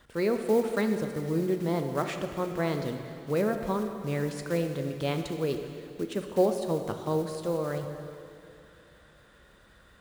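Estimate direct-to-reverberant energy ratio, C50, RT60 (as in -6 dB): 5.5 dB, 6.5 dB, 2.8 s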